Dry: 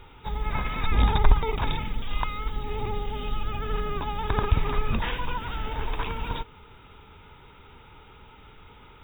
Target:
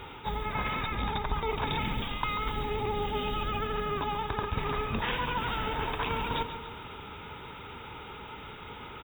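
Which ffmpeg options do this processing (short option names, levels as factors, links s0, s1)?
-af "highpass=f=130:p=1,areverse,acompressor=threshold=0.0158:ratio=10,areverse,aecho=1:1:139|278|417|556|695|834:0.299|0.161|0.0871|0.047|0.0254|0.0137,volume=2.51"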